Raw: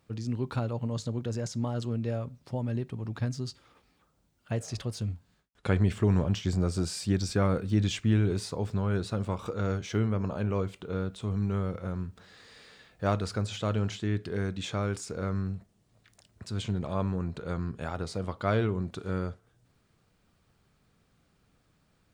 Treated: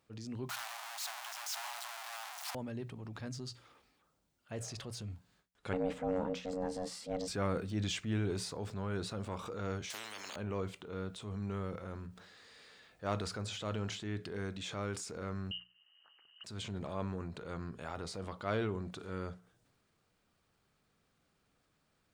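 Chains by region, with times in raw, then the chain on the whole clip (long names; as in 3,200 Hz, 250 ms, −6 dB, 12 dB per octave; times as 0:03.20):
0:00.49–0:02.55: sign of each sample alone + Butterworth high-pass 690 Hz 72 dB per octave
0:05.73–0:07.28: high-shelf EQ 2,500 Hz −7.5 dB + ring modulation 370 Hz
0:09.90–0:10.36: high-pass filter 280 Hz 24 dB per octave + every bin compressed towards the loudest bin 10 to 1
0:15.51–0:16.44: phaser with its sweep stopped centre 1,500 Hz, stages 4 + voice inversion scrambler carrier 3,000 Hz + multiband upward and downward compressor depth 40%
whole clip: low-shelf EQ 230 Hz −7 dB; mains-hum notches 60/120/180 Hz; transient designer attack −5 dB, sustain +4 dB; level −4.5 dB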